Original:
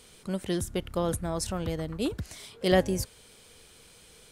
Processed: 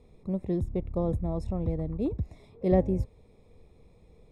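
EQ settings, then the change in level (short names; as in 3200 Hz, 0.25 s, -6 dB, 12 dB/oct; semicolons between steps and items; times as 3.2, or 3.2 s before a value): running mean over 29 samples; low shelf 110 Hz +8.5 dB; 0.0 dB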